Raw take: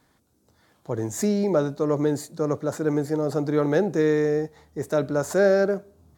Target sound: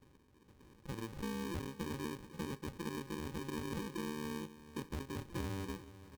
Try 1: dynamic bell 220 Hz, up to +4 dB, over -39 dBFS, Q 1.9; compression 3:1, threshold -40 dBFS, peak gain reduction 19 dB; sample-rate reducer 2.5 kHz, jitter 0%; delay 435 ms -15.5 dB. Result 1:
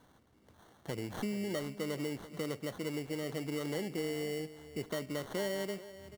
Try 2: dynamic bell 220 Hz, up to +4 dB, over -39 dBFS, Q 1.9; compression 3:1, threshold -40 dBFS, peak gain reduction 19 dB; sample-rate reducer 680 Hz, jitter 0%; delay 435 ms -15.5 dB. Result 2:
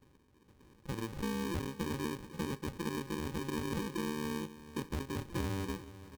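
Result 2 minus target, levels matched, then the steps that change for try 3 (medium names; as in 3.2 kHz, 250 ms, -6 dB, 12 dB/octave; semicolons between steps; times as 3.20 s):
compression: peak gain reduction -4.5 dB
change: compression 3:1, threshold -46.5 dBFS, peak gain reduction 23.5 dB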